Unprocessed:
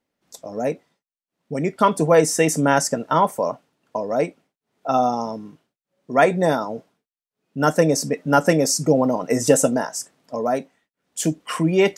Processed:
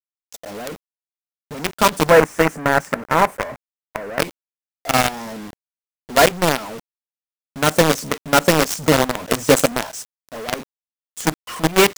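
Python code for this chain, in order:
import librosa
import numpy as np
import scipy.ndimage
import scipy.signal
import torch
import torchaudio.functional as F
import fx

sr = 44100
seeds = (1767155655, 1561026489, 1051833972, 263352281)

y = fx.quant_companded(x, sr, bits=2)
y = fx.high_shelf_res(y, sr, hz=2600.0, db=-9.5, q=1.5, at=(2.1, 4.2))
y = F.gain(torch.from_numpy(y), -5.0).numpy()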